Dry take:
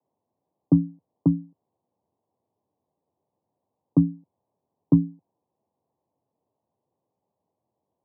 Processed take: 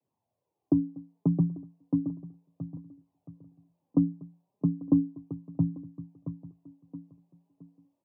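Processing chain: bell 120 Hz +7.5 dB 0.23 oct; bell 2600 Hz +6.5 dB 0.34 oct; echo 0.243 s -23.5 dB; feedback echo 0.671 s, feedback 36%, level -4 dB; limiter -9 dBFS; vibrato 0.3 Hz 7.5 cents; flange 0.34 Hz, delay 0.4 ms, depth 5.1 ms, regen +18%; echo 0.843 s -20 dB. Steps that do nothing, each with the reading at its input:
bell 2600 Hz: input band ends at 450 Hz

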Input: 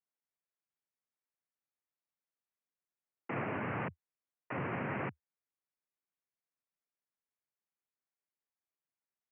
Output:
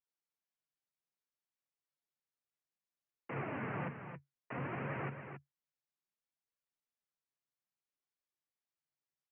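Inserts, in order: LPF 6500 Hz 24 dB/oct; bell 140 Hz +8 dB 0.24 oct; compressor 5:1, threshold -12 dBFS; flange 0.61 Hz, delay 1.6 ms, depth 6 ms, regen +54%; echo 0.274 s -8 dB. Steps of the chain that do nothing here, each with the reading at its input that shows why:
LPF 6500 Hz: input band ends at 2900 Hz; compressor, threshold -12 dBFS: input peak -24.0 dBFS

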